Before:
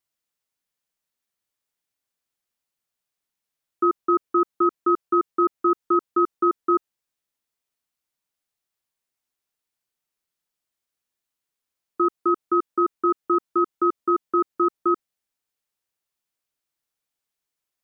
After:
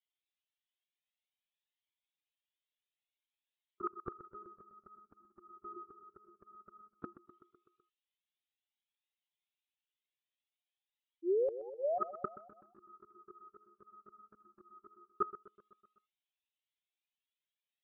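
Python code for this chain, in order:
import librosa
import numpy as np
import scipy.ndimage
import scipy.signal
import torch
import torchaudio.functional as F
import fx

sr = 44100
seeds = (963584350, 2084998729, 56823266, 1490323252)

p1 = fx.bin_expand(x, sr, power=1.5)
p2 = fx.lpc_monotone(p1, sr, seeds[0], pitch_hz=210.0, order=16)
p3 = fx.spec_paint(p2, sr, seeds[1], shape='rise', start_s=11.22, length_s=0.48, low_hz=320.0, high_hz=880.0, level_db=-31.0)
p4 = p3 + 10.0 ** (-6.5 / 20.0) * np.pad(p3, (int(360 * sr / 1000.0), 0))[:len(p3)]
p5 = fx.auto_swell(p4, sr, attack_ms=301.0)
p6 = scipy.signal.sosfilt(scipy.signal.butter(2, 100.0, 'highpass', fs=sr, output='sos'), p5)
p7 = fx.gate_flip(p6, sr, shuts_db=-29.0, range_db=-30)
p8 = fx.peak_eq(p7, sr, hz=370.0, db=8.0, octaves=0.29)
p9 = p8 + fx.echo_feedback(p8, sr, ms=126, feedback_pct=60, wet_db=-15.0, dry=0)
p10 = fx.comb_cascade(p9, sr, direction='rising', hz=0.54)
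y = F.gain(torch.from_numpy(p10), 8.5).numpy()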